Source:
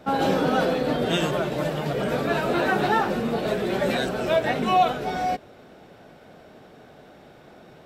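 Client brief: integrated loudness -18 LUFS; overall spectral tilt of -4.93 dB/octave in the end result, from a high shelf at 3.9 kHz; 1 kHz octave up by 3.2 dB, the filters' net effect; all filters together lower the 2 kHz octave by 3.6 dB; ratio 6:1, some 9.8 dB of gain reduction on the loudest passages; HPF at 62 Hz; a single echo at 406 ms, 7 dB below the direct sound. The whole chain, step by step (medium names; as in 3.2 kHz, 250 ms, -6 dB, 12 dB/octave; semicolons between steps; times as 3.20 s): high-pass 62 Hz; peaking EQ 1 kHz +6.5 dB; peaking EQ 2 kHz -7 dB; treble shelf 3.9 kHz -5 dB; compression 6:1, threshold -23 dBFS; delay 406 ms -7 dB; trim +9 dB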